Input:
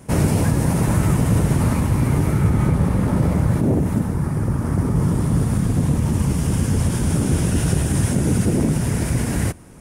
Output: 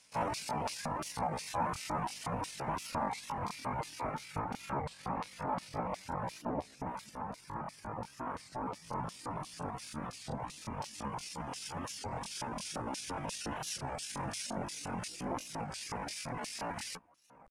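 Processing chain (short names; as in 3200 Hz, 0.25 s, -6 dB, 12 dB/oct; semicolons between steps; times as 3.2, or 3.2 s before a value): octaver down 2 oct, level -1 dB; LFO band-pass square 5.1 Hz 910–4700 Hz; tempo 0.56×; bell 380 Hz -8 dB 0.28 oct; reverb removal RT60 0.73 s; bell 2500 Hz +5.5 dB 0.4 oct; record warp 33 1/3 rpm, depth 160 cents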